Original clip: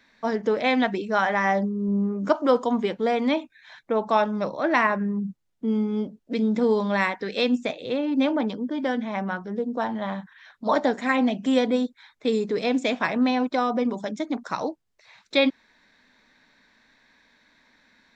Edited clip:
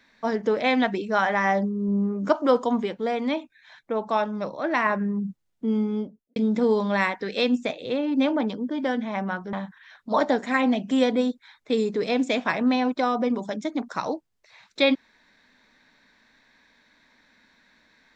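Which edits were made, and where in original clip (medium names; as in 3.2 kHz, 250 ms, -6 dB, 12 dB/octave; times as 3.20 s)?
2.84–4.86 s: gain -3 dB
5.86–6.36 s: studio fade out
9.53–10.08 s: delete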